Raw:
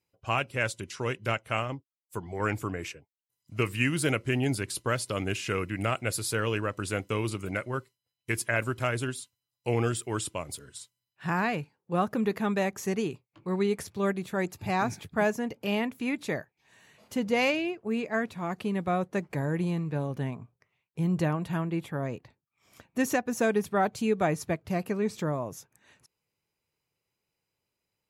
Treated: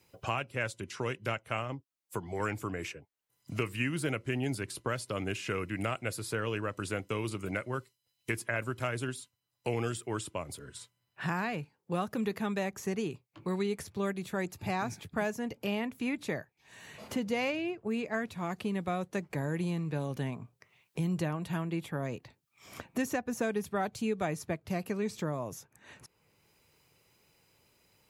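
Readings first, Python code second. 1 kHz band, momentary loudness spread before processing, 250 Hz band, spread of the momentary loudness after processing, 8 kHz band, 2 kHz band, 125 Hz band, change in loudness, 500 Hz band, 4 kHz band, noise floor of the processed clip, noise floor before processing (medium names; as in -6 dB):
-5.5 dB, 10 LU, -4.0 dB, 10 LU, -6.0 dB, -5.0 dB, -4.5 dB, -5.0 dB, -5.0 dB, -5.0 dB, -81 dBFS, under -85 dBFS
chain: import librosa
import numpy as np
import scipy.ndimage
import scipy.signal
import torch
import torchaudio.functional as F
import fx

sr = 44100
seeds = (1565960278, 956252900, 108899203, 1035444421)

y = fx.band_squash(x, sr, depth_pct=70)
y = y * 10.0 ** (-5.0 / 20.0)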